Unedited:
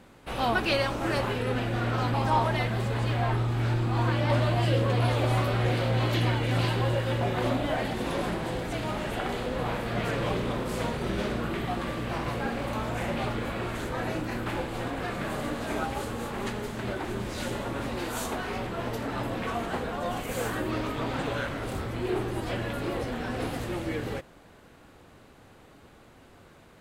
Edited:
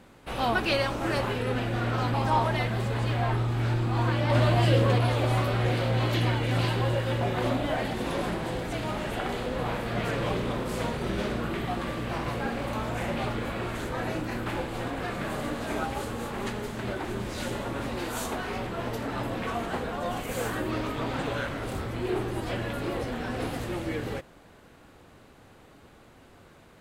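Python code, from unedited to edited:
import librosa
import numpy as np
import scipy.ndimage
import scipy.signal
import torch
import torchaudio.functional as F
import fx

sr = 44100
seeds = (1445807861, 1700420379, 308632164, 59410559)

y = fx.edit(x, sr, fx.clip_gain(start_s=4.35, length_s=0.63, db=3.0), tone=tone)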